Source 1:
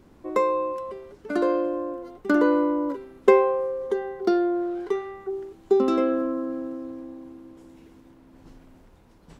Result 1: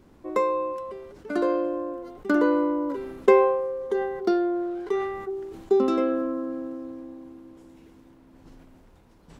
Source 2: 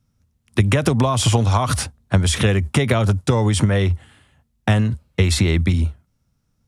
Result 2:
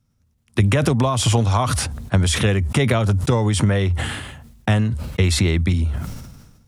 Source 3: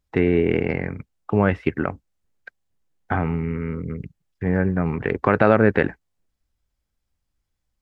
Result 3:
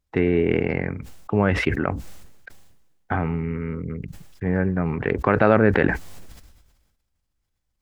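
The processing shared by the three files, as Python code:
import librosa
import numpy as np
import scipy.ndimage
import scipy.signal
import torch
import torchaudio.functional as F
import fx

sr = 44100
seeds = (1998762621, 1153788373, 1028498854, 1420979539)

y = fx.sustainer(x, sr, db_per_s=46.0)
y = F.gain(torch.from_numpy(y), -1.5).numpy()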